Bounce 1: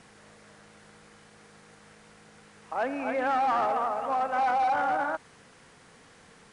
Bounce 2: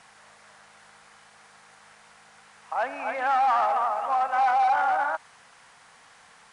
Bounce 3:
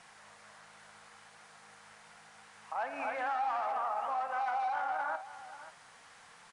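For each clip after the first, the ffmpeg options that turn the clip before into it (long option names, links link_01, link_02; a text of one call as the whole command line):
ffmpeg -i in.wav -af "lowshelf=frequency=560:width_type=q:width=1.5:gain=-11,volume=2dB" out.wav
ffmpeg -i in.wav -af "flanger=delay=5.6:depth=5.1:regen=72:speed=1.4:shape=sinusoidal,alimiter=level_in=4dB:limit=-24dB:level=0:latency=1:release=210,volume=-4dB,aecho=1:1:57|534:0.224|0.188,volume=1dB" out.wav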